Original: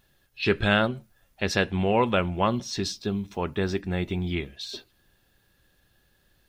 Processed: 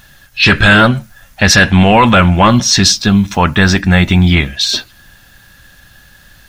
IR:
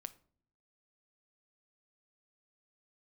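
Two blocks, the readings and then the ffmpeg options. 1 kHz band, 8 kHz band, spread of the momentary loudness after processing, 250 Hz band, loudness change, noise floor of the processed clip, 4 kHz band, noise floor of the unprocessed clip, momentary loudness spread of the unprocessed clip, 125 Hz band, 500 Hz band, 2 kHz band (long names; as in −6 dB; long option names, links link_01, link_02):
+17.0 dB, +24.5 dB, 7 LU, +17.0 dB, +17.5 dB, −44 dBFS, +20.0 dB, −67 dBFS, 11 LU, +19.0 dB, +10.5 dB, +19.0 dB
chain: -af "equalizer=frequency=400:width_type=o:width=0.67:gain=-12,equalizer=frequency=1600:width_type=o:width=0.67:gain=5,equalizer=frequency=6300:width_type=o:width=0.67:gain=4,apsyclip=23.5dB,volume=-2dB"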